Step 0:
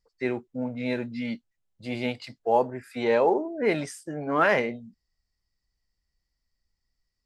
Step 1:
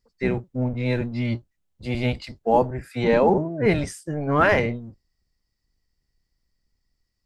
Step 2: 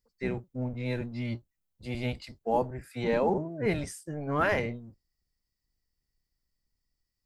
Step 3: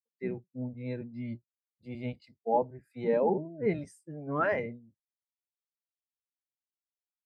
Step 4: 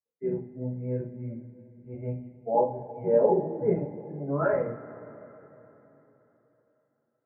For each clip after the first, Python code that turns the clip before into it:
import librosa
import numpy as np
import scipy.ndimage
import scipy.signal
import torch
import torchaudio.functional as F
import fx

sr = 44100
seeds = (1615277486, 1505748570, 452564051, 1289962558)

y1 = fx.octave_divider(x, sr, octaves=1, level_db=2.0)
y1 = y1 * librosa.db_to_amplitude(3.0)
y2 = fx.high_shelf(y1, sr, hz=9400.0, db=10.5)
y2 = y2 * librosa.db_to_amplitude(-8.5)
y3 = scipy.signal.sosfilt(scipy.signal.butter(2, 120.0, 'highpass', fs=sr, output='sos'), y2)
y3 = fx.spectral_expand(y3, sr, expansion=1.5)
y4 = scipy.ndimage.gaussian_filter1d(y3, 6.5, mode='constant')
y4 = fx.rev_double_slope(y4, sr, seeds[0], early_s=0.32, late_s=3.8, knee_db=-21, drr_db=-6.5)
y4 = y4 * librosa.db_to_amplitude(-2.0)